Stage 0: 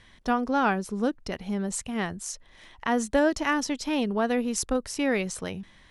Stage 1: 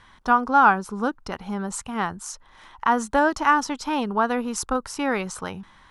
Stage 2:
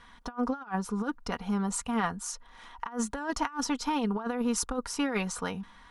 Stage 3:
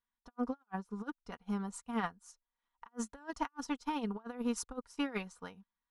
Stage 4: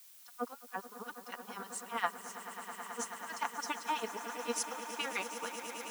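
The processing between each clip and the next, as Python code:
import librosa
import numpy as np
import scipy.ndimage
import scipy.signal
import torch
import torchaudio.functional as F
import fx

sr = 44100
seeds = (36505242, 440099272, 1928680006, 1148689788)

y1 = fx.band_shelf(x, sr, hz=1100.0, db=11.0, octaves=1.1)
y2 = y1 + 0.59 * np.pad(y1, (int(4.2 * sr / 1000.0), 0))[:len(y1)]
y2 = fx.over_compress(y2, sr, threshold_db=-23.0, ratio=-0.5)
y2 = F.gain(torch.from_numpy(y2), -6.5).numpy()
y3 = fx.upward_expand(y2, sr, threshold_db=-50.0, expansion=2.5)
y3 = F.gain(torch.from_numpy(y3), -4.0).numpy()
y4 = fx.filter_lfo_highpass(y3, sr, shape='sine', hz=8.6, low_hz=460.0, high_hz=2800.0, q=0.94)
y4 = fx.echo_swell(y4, sr, ms=108, loudest=8, wet_db=-14.5)
y4 = fx.dmg_noise_colour(y4, sr, seeds[0], colour='blue', level_db=-62.0)
y4 = F.gain(torch.from_numpy(y4), 5.0).numpy()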